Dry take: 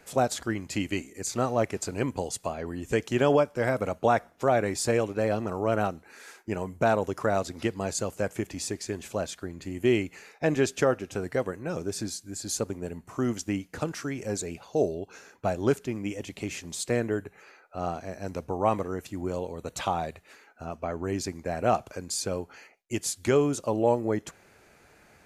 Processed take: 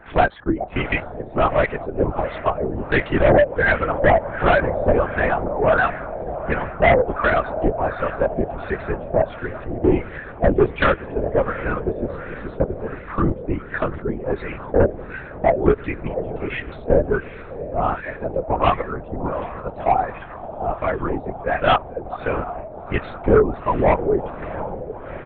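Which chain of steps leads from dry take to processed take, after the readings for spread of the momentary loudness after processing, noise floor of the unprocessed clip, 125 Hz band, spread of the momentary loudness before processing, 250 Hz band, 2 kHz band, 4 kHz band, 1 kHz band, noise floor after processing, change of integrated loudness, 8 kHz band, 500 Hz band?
12 LU, -58 dBFS, +7.5 dB, 11 LU, +5.5 dB, +12.5 dB, +2.5 dB, +9.5 dB, -36 dBFS, +8.0 dB, under -40 dB, +8.0 dB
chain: backward echo that repeats 213 ms, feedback 49%, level -13.5 dB; tilt EQ +3 dB/octave; reverb removal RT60 1.7 s; echo that smears into a reverb 727 ms, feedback 65%, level -14.5 dB; LFO low-pass sine 1.4 Hz 600–1900 Hz; doubling 12 ms -8.5 dB; sine folder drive 7 dB, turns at -8.5 dBFS; bass shelf 250 Hz +9 dB; LPC vocoder at 8 kHz whisper; trim -2 dB

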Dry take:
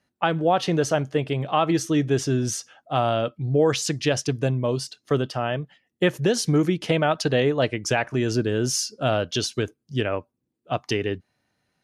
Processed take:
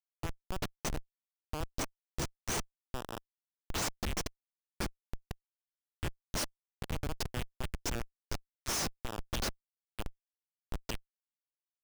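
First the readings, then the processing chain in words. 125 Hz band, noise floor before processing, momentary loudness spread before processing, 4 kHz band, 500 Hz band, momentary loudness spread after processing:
-17.5 dB, -78 dBFS, 7 LU, -12.0 dB, -23.0 dB, 12 LU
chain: differentiator; pre-echo 74 ms -24 dB; Schmitt trigger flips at -29 dBFS; trim +5.5 dB

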